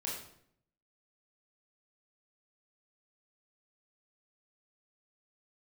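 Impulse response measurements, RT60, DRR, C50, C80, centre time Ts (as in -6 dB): 0.65 s, -5.0 dB, 3.0 dB, 6.5 dB, 47 ms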